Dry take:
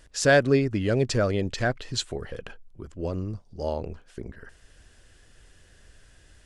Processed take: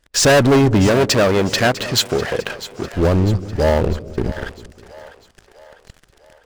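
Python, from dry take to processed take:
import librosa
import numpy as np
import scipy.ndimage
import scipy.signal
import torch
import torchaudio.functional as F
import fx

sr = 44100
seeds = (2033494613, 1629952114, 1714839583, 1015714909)

y = fx.high_shelf(x, sr, hz=8000.0, db=-7.5)
y = fx.leveller(y, sr, passes=5)
y = fx.highpass(y, sr, hz=230.0, slope=6, at=(0.87, 2.93))
y = fx.echo_split(y, sr, split_hz=540.0, low_ms=199, high_ms=650, feedback_pct=52, wet_db=-15.0)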